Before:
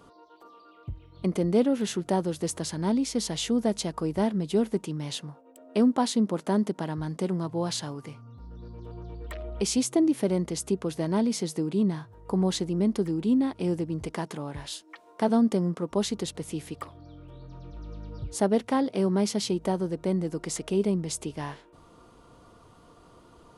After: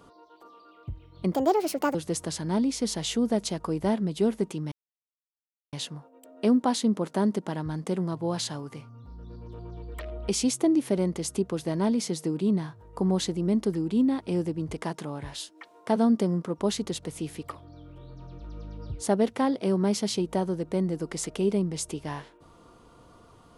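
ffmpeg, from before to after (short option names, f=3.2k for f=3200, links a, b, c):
-filter_complex "[0:a]asplit=4[a][b][c][d];[a]atrim=end=1.334[e];[b]atrim=start=1.33:end=2.28,asetpts=PTS-STARTPTS,asetrate=67914,aresample=44100[f];[c]atrim=start=2.276:end=5.05,asetpts=PTS-STARTPTS,afade=t=out:st=2.77:d=0.004:c=hsin,apad=pad_dur=1.01[g];[d]atrim=start=5.05,asetpts=PTS-STARTPTS,afade=t=in:d=0.004:c=hsin[h];[e][f]acrossfade=d=0.004:c1=hsin:c2=hsin[i];[g][h]concat=n=2:v=0:a=1[j];[i][j]acrossfade=d=0.004:c1=hsin:c2=hsin"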